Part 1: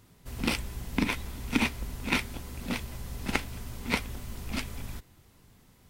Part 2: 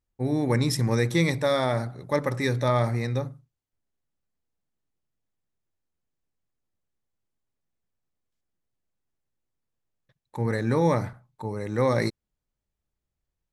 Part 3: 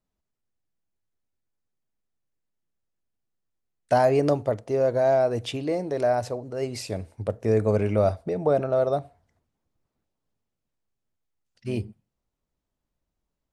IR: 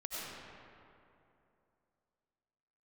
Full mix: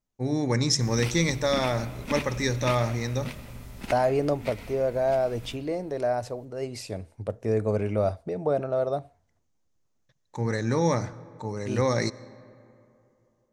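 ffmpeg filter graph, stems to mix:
-filter_complex "[0:a]adelay=550,volume=-8dB,asplit=2[a][b];[b]volume=-7.5dB[c];[1:a]dynaudnorm=f=110:g=3:m=8dB,lowpass=f=6.4k:t=q:w=4.6,volume=-9.5dB,asplit=2[d][e];[e]volume=-20dB[f];[2:a]volume=-3.5dB,asplit=2[g][h];[h]apad=whole_len=284421[i];[a][i]sidechaincompress=threshold=-30dB:ratio=8:attack=12:release=203[j];[3:a]atrim=start_sample=2205[k];[c][f]amix=inputs=2:normalize=0[l];[l][k]afir=irnorm=-1:irlink=0[m];[j][d][g][m]amix=inputs=4:normalize=0"

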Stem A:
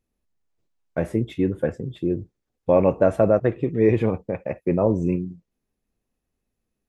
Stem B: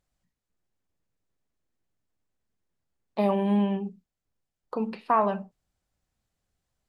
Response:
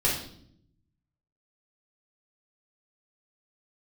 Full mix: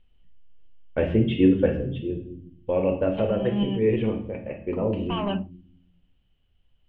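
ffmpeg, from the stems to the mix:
-filter_complex "[0:a]equalizer=f=110:w=1.8:g=-11,volume=-4.5dB,afade=t=out:st=1.73:d=0.31:silence=0.398107,asplit=3[a][b][c];[b]volume=-11.5dB[d];[1:a]asoftclip=type=tanh:threshold=-17dB,volume=0.5dB[e];[c]apad=whole_len=303691[f];[e][f]sidechaincompress=threshold=-45dB:ratio=6:attack=42:release=178[g];[2:a]atrim=start_sample=2205[h];[d][h]afir=irnorm=-1:irlink=0[i];[a][g][i]amix=inputs=3:normalize=0,lowpass=f=3k:t=q:w=14,aemphasis=mode=reproduction:type=bsi"

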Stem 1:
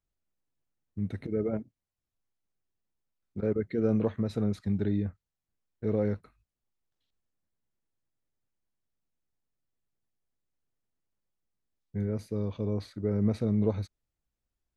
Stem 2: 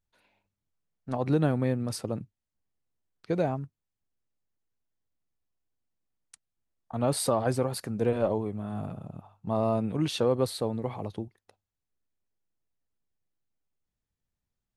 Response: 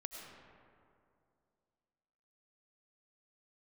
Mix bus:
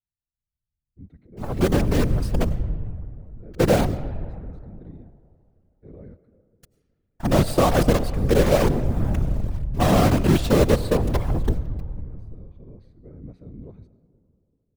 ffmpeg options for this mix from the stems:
-filter_complex "[0:a]highshelf=f=4.3k:g=-9,volume=-15dB,asplit=2[a][b];[b]volume=-7dB[c];[1:a]lowpass=f=4k:p=1,dynaudnorm=f=240:g=13:m=12dB,acrusher=bits=4:dc=4:mix=0:aa=0.000001,adelay=300,volume=-1dB,asplit=2[d][e];[e]volume=-7dB[f];[2:a]atrim=start_sample=2205[g];[c][f]amix=inputs=2:normalize=0[h];[h][g]afir=irnorm=-1:irlink=0[i];[a][d][i]amix=inputs=3:normalize=0,afftfilt=real='hypot(re,im)*cos(2*PI*random(0))':imag='hypot(re,im)*sin(2*PI*random(1))':win_size=512:overlap=0.75,lowshelf=f=240:g=8.5"

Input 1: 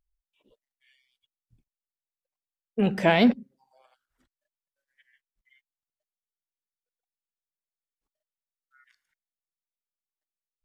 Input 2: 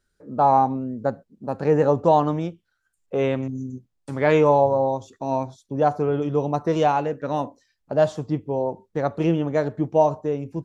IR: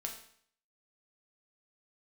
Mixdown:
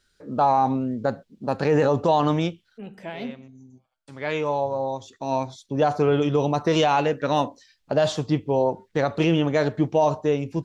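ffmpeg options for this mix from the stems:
-filter_complex "[0:a]volume=-17dB,asplit=3[a][b][c];[b]volume=-9.5dB[d];[1:a]equalizer=f=3.6k:t=o:w=2.1:g=11,volume=2.5dB[e];[c]apad=whole_len=469526[f];[e][f]sidechaincompress=threshold=-58dB:ratio=4:attack=12:release=1470[g];[2:a]atrim=start_sample=2205[h];[d][h]afir=irnorm=-1:irlink=0[i];[a][g][i]amix=inputs=3:normalize=0,alimiter=limit=-10.5dB:level=0:latency=1:release=29"

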